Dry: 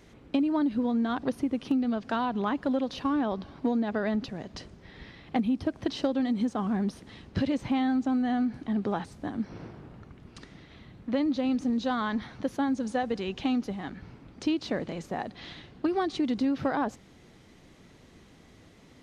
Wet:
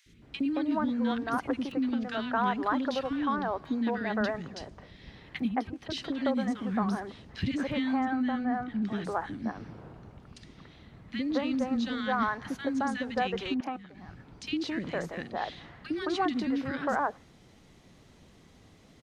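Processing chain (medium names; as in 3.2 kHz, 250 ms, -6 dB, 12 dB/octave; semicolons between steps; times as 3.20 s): dynamic bell 1.7 kHz, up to +8 dB, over -47 dBFS, Q 0.82; 5.44–5.90 s: compression, threshold -30 dBFS, peak gain reduction 8 dB; 8.00–8.82 s: treble shelf 3.5 kHz -8 dB; 13.54–13.98 s: level held to a coarse grid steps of 23 dB; three bands offset in time highs, lows, mids 60/220 ms, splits 350/1800 Hz; trim -1 dB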